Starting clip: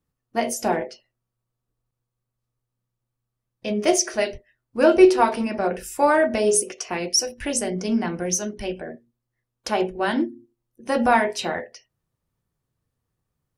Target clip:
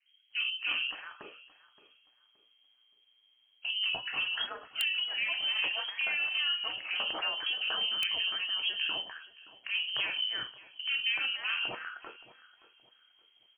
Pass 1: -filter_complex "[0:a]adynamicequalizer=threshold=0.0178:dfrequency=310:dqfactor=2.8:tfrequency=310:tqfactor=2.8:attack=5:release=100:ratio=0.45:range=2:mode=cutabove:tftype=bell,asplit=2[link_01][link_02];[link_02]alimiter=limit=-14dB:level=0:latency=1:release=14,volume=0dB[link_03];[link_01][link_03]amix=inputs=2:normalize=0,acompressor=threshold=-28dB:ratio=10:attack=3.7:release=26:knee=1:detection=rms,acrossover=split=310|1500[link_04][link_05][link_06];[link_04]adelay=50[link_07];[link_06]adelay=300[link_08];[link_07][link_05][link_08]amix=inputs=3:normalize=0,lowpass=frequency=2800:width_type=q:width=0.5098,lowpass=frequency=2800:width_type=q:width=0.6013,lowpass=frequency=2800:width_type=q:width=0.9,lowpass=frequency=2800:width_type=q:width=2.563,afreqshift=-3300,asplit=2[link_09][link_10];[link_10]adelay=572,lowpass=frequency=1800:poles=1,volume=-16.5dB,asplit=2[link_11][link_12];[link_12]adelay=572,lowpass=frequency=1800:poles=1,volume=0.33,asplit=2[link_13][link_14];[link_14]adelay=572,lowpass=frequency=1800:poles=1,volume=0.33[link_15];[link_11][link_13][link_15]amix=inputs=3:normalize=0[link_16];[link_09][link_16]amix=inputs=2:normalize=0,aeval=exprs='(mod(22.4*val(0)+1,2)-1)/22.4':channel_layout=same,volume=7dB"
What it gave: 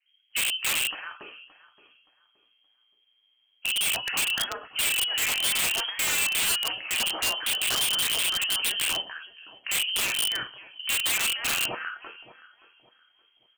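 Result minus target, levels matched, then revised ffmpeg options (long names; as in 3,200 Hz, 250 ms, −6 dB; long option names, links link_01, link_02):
downward compressor: peak gain reduction −7 dB
-filter_complex "[0:a]adynamicequalizer=threshold=0.0178:dfrequency=310:dqfactor=2.8:tfrequency=310:tqfactor=2.8:attack=5:release=100:ratio=0.45:range=2:mode=cutabove:tftype=bell,asplit=2[link_01][link_02];[link_02]alimiter=limit=-14dB:level=0:latency=1:release=14,volume=0dB[link_03];[link_01][link_03]amix=inputs=2:normalize=0,acompressor=threshold=-36dB:ratio=10:attack=3.7:release=26:knee=1:detection=rms,acrossover=split=310|1500[link_04][link_05][link_06];[link_04]adelay=50[link_07];[link_06]adelay=300[link_08];[link_07][link_05][link_08]amix=inputs=3:normalize=0,lowpass=frequency=2800:width_type=q:width=0.5098,lowpass=frequency=2800:width_type=q:width=0.6013,lowpass=frequency=2800:width_type=q:width=0.9,lowpass=frequency=2800:width_type=q:width=2.563,afreqshift=-3300,asplit=2[link_09][link_10];[link_10]adelay=572,lowpass=frequency=1800:poles=1,volume=-16.5dB,asplit=2[link_11][link_12];[link_12]adelay=572,lowpass=frequency=1800:poles=1,volume=0.33,asplit=2[link_13][link_14];[link_14]adelay=572,lowpass=frequency=1800:poles=1,volume=0.33[link_15];[link_11][link_13][link_15]amix=inputs=3:normalize=0[link_16];[link_09][link_16]amix=inputs=2:normalize=0,aeval=exprs='(mod(22.4*val(0)+1,2)-1)/22.4':channel_layout=same,volume=7dB"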